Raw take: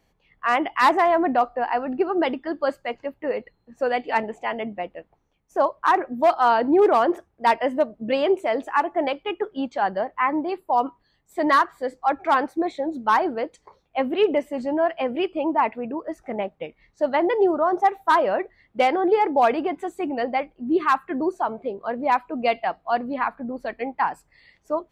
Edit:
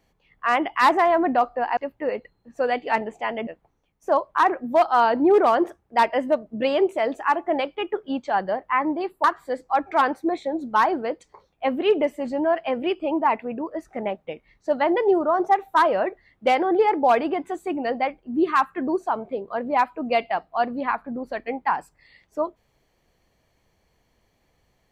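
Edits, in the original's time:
1.77–2.99 cut
4.69–4.95 cut
10.72–11.57 cut

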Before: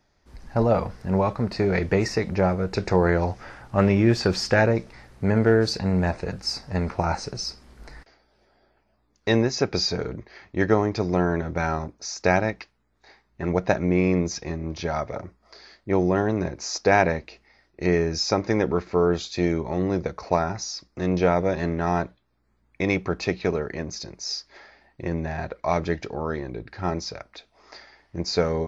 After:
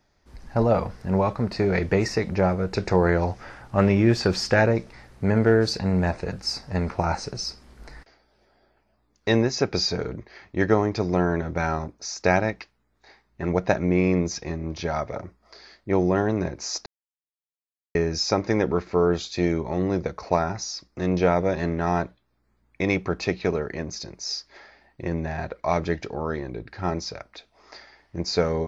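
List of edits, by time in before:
16.86–17.95 mute

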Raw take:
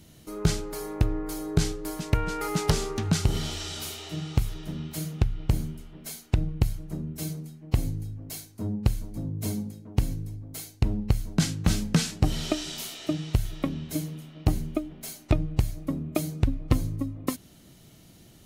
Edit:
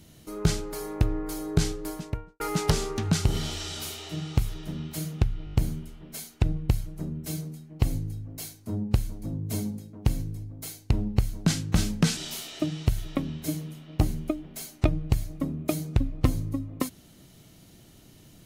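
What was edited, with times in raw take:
1.8–2.4 studio fade out
5.45 stutter 0.02 s, 5 plays
12.09–12.64 cut

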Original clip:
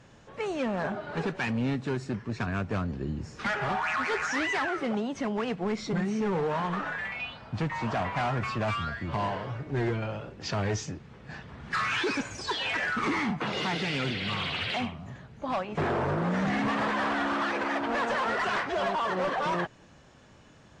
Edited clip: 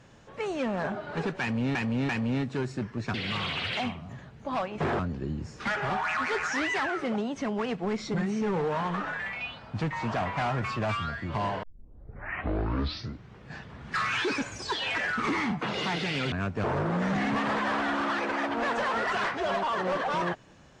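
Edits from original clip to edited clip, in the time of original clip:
1.41–1.75 loop, 3 plays
2.46–2.78 swap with 14.11–15.96
9.42 tape start 1.84 s

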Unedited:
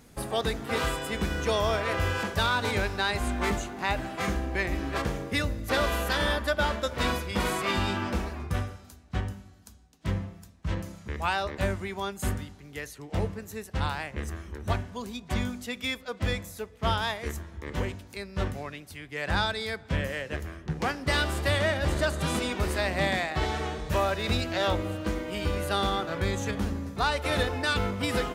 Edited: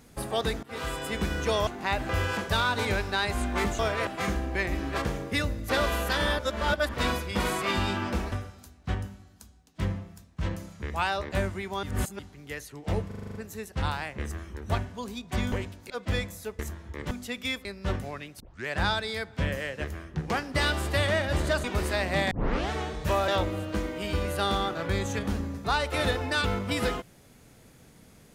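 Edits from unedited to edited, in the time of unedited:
0.63–1.06 fade in, from -19.5 dB
1.67–1.95 swap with 3.65–4.07
6.39–6.94 reverse
8.32–8.58 cut
12.09–12.45 reverse
13.33 stutter 0.04 s, 8 plays
15.5–16.04 swap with 17.79–18.17
16.73–17.27 cut
18.92 tape start 0.27 s
22.16–22.49 cut
23.16 tape start 0.39 s
24.13–24.6 cut

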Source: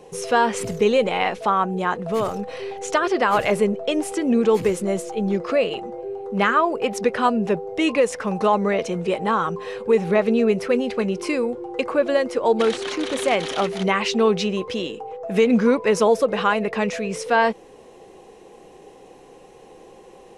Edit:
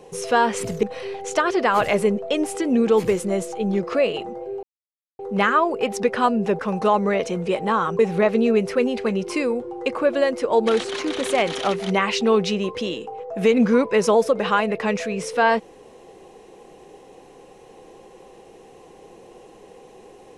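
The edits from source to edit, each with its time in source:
0.83–2.4 cut
6.2 insert silence 0.56 s
7.6–8.18 cut
9.58–9.92 cut

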